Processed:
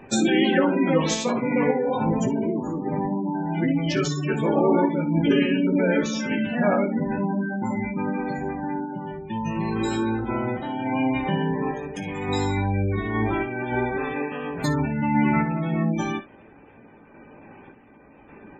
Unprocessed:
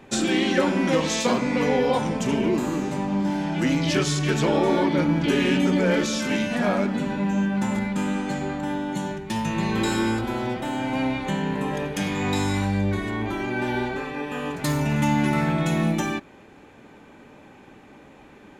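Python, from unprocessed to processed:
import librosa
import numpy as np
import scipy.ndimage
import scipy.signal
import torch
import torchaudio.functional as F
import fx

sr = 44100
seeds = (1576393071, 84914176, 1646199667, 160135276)

y = fx.tremolo_random(x, sr, seeds[0], hz=3.5, depth_pct=55)
y = fx.spec_gate(y, sr, threshold_db=-20, keep='strong')
y = fx.room_early_taps(y, sr, ms=(18, 57, 69), db=(-8.0, -16.0, -17.0))
y = F.gain(torch.from_numpy(y), 2.5).numpy()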